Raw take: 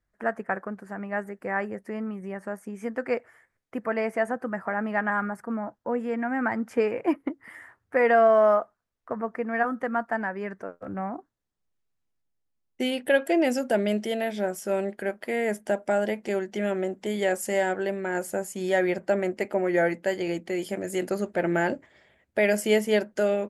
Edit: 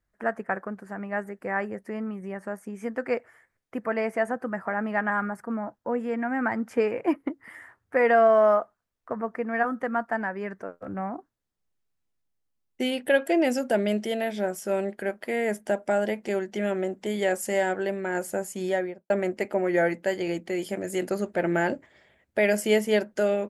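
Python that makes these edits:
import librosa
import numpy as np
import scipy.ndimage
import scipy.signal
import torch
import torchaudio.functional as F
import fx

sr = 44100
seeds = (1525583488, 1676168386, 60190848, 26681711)

y = fx.studio_fade_out(x, sr, start_s=18.59, length_s=0.51)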